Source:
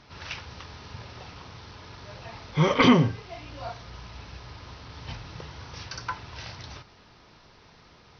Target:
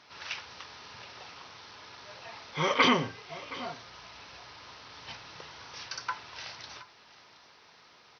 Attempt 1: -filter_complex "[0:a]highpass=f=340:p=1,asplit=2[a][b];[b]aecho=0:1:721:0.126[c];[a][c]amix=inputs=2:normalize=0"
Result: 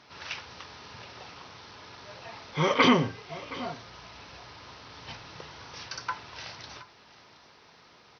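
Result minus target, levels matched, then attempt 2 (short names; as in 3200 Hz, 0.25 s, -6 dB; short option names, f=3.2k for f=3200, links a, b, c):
250 Hz band +2.5 dB
-filter_complex "[0:a]highpass=f=790:p=1,asplit=2[a][b];[b]aecho=0:1:721:0.126[c];[a][c]amix=inputs=2:normalize=0"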